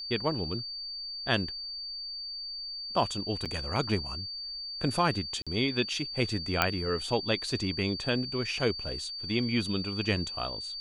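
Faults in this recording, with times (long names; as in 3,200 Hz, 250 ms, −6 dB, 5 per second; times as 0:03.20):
whistle 4,600 Hz −36 dBFS
0:03.45–0:03.46: drop-out 6.9 ms
0:05.42–0:05.47: drop-out 46 ms
0:06.62: click −8 dBFS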